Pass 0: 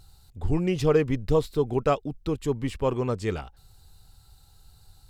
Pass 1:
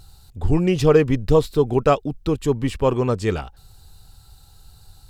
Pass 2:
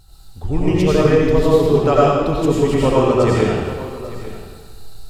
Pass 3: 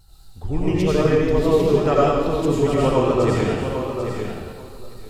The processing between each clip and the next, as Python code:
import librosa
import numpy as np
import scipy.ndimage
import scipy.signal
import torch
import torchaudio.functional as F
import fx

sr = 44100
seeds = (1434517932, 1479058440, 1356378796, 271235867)

y1 = fx.notch(x, sr, hz=2100.0, q=20.0)
y1 = y1 * 10.0 ** (6.5 / 20.0)
y2 = fx.rider(y1, sr, range_db=10, speed_s=2.0)
y2 = y2 + 10.0 ** (-16.0 / 20.0) * np.pad(y2, (int(847 * sr / 1000.0), 0))[:len(y2)]
y2 = fx.rev_freeverb(y2, sr, rt60_s=1.5, hf_ratio=0.9, predelay_ms=55, drr_db=-7.0)
y2 = y2 * 10.0 ** (-2.5 / 20.0)
y3 = fx.vibrato(y2, sr, rate_hz=4.9, depth_cents=37.0)
y3 = y3 + 10.0 ** (-8.0 / 20.0) * np.pad(y3, (int(793 * sr / 1000.0), 0))[:len(y3)]
y3 = y3 * 10.0 ** (-4.0 / 20.0)